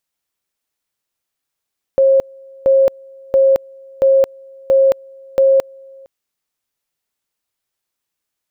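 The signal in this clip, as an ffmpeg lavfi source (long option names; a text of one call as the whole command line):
ffmpeg -f lavfi -i "aevalsrc='pow(10,(-7.5-28.5*gte(mod(t,0.68),0.22))/20)*sin(2*PI*539*t)':duration=4.08:sample_rate=44100" out.wav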